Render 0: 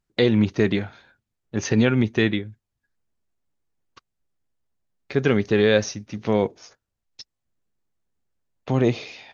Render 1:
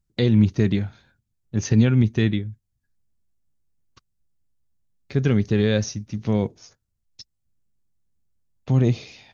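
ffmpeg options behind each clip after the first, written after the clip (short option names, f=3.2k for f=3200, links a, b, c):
-af "bass=f=250:g=14,treble=f=4k:g=8,volume=-7dB"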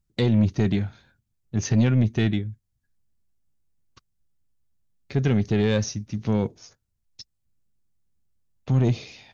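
-af "asoftclip=type=tanh:threshold=-12.5dB"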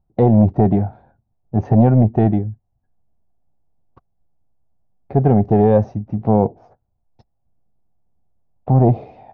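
-af "lowpass=f=750:t=q:w=4.9,volume=6.5dB"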